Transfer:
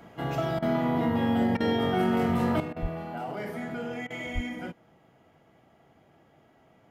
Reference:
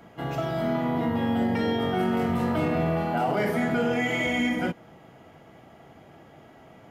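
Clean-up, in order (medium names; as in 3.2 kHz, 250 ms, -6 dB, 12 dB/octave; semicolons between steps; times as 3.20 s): de-plosive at 2.81/4.34 s; interpolate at 0.59/1.57/2.73/4.07 s, 32 ms; gain correction +10 dB, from 2.60 s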